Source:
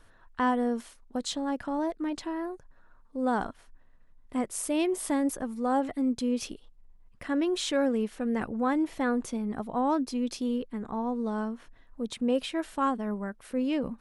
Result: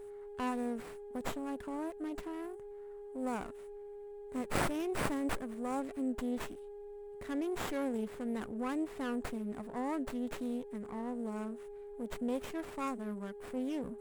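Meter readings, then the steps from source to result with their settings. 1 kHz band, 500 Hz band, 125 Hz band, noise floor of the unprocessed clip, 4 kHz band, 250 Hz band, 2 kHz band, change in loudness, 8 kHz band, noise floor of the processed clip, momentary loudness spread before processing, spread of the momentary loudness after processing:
-9.5 dB, -7.0 dB, -2.0 dB, -58 dBFS, -11.0 dB, -8.5 dB, -6.0 dB, -8.5 dB, -10.5 dB, -48 dBFS, 9 LU, 12 LU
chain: whistle 410 Hz -38 dBFS; dynamic bell 750 Hz, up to -5 dB, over -42 dBFS, Q 1.2; in parallel at -8 dB: one-sided clip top -41 dBFS; on the sum: resonant high shelf 6.6 kHz +9.5 dB, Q 3; sliding maximum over 9 samples; trim -9 dB

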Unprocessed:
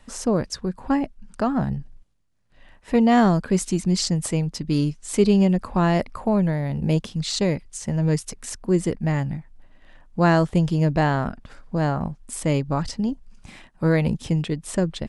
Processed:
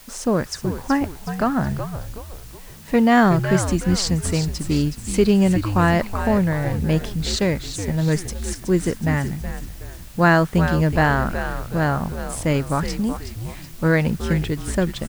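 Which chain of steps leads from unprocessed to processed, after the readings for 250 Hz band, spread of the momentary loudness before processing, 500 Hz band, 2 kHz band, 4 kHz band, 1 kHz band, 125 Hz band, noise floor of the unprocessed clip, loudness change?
+1.5 dB, 11 LU, +2.0 dB, +7.5 dB, +2.5 dB, +3.5 dB, +2.0 dB, -54 dBFS, +2.0 dB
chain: word length cut 8-bit, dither triangular; frequency-shifting echo 371 ms, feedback 46%, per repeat -98 Hz, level -8.5 dB; dynamic bell 1.6 kHz, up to +7 dB, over -42 dBFS, Q 1.5; trim +1 dB

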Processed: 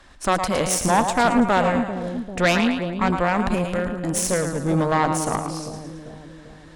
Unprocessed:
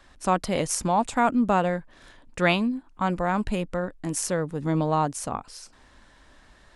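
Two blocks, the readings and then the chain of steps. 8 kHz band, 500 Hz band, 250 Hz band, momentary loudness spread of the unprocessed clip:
+6.0 dB, +4.5 dB, +4.5 dB, 11 LU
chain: two-band feedback delay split 560 Hz, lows 394 ms, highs 110 ms, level -7.5 dB; Chebyshev shaper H 5 -16 dB, 6 -14 dB, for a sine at -7 dBFS

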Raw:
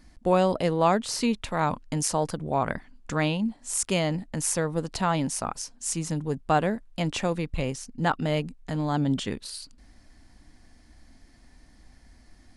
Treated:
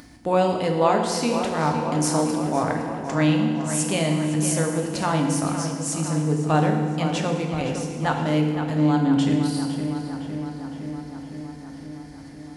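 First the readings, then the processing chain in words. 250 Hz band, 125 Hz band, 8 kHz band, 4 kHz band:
+7.0 dB, +6.0 dB, +2.0 dB, +2.5 dB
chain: upward compressor, threshold -35 dBFS; high-pass 95 Hz 12 dB/octave; on a send: filtered feedback delay 511 ms, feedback 72%, low-pass 3.9 kHz, level -9 dB; on the sum: FDN reverb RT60 1.6 s, low-frequency decay 1.4×, high-frequency decay 0.9×, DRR 2 dB

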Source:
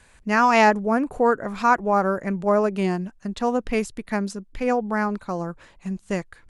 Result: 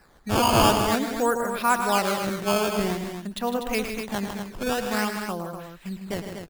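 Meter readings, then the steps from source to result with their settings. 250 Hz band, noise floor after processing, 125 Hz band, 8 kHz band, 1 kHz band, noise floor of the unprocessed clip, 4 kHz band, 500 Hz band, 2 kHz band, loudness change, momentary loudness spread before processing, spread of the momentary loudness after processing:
-3.0 dB, -52 dBFS, 0.0 dB, +9.0 dB, -3.0 dB, -55 dBFS, +9.0 dB, -3.5 dB, -3.5 dB, -2.5 dB, 13 LU, 13 LU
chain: peaking EQ 3.4 kHz +10 dB 1.4 oct; decimation with a swept rate 13×, swing 160% 0.5 Hz; on a send: loudspeakers at several distances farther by 37 m -10 dB, 53 m -9 dB, 84 m -8 dB; on the sum: trim -5 dB

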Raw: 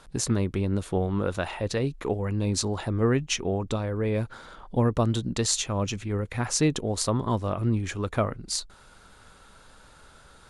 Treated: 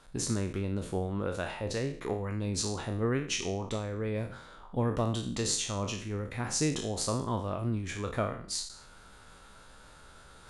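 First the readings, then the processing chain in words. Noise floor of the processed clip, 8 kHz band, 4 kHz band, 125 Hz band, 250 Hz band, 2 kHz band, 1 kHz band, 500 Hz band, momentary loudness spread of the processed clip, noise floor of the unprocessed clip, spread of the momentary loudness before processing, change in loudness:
-54 dBFS, -4.0 dB, -4.0 dB, -6.5 dB, -6.0 dB, -4.0 dB, -5.0 dB, -5.5 dB, 6 LU, -53 dBFS, 6 LU, -5.5 dB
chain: spectral sustain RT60 0.51 s; reverse; upward compressor, threshold -39 dBFS; reverse; trim -7 dB

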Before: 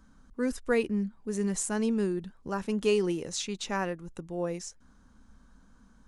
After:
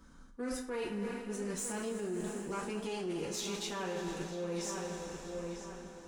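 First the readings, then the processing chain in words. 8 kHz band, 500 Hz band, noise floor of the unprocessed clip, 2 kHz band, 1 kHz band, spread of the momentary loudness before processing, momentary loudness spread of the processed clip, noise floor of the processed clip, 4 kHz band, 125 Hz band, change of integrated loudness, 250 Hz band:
-4.0 dB, -7.0 dB, -60 dBFS, -6.5 dB, -4.0 dB, 10 LU, 6 LU, -53 dBFS, -3.5 dB, -6.5 dB, -7.5 dB, -8.0 dB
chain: single-diode clipper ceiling -30 dBFS; bass shelf 360 Hz -5 dB; two-slope reverb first 0.31 s, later 4.7 s, from -18 dB, DRR -4 dB; peak limiter -21 dBFS, peak gain reduction 8 dB; on a send: filtered feedback delay 946 ms, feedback 31%, low-pass 3.8 kHz, level -10.5 dB; on the sum: reverse; compression, threshold -35 dBFS, peak gain reduction 10.5 dB; reverse

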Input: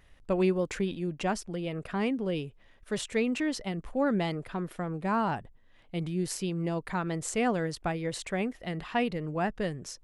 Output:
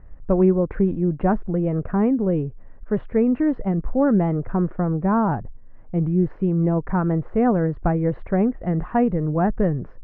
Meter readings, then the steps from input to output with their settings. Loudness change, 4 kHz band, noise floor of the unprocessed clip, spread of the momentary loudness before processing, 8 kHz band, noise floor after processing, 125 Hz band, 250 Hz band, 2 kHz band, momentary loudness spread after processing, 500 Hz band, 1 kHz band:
+10.0 dB, under -20 dB, -59 dBFS, 7 LU, under -40 dB, -41 dBFS, +12.5 dB, +11.5 dB, -1.0 dB, 5 LU, +8.5 dB, +6.5 dB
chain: low-pass 1.6 kHz 24 dB/octave; tilt EQ -2.5 dB/octave; in parallel at +0.5 dB: gain riding 0.5 s

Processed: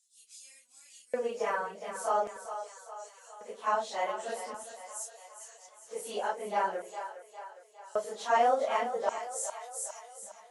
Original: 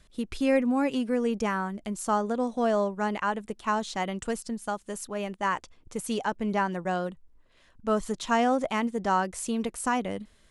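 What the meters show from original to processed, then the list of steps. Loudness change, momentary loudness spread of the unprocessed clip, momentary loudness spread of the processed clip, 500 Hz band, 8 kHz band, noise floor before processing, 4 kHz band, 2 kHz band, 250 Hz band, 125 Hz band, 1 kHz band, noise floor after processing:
-4.5 dB, 9 LU, 19 LU, -4.5 dB, -1.0 dB, -60 dBFS, -6.5 dB, -6.5 dB, -22.5 dB, under -20 dB, -3.0 dB, -60 dBFS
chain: phase randomisation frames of 100 ms; LFO high-pass square 0.44 Hz 580–6900 Hz; two-band feedback delay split 480 Hz, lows 89 ms, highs 408 ms, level -10 dB; trim -5.5 dB

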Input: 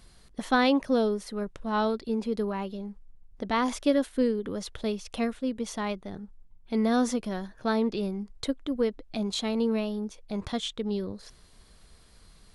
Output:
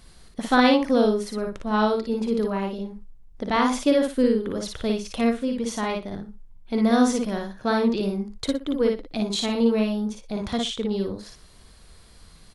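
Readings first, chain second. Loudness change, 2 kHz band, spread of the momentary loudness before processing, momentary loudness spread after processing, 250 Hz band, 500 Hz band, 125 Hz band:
+5.5 dB, +5.0 dB, 12 LU, 12 LU, +5.5 dB, +5.5 dB, +5.0 dB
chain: multi-tap echo 43/56/119 ms -14.5/-3/-18 dB; trim +3.5 dB

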